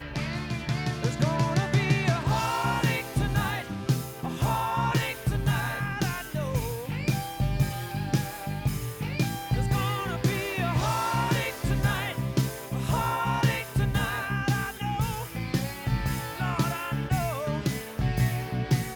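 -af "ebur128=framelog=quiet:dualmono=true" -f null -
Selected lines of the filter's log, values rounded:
Integrated loudness:
  I:         -25.1 LUFS
  Threshold: -35.1 LUFS
Loudness range:
  LRA:         3.1 LU
  Threshold: -45.2 LUFS
  LRA low:   -26.6 LUFS
  LRA high:  -23.5 LUFS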